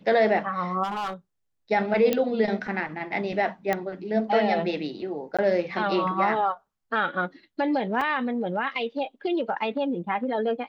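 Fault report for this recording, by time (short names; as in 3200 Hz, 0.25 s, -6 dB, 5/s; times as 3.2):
0.83–1.14 clipped -26.5 dBFS
2.13 pop -10 dBFS
3.73 pop -12 dBFS
5.37–5.39 gap 16 ms
8.01 gap 3.9 ms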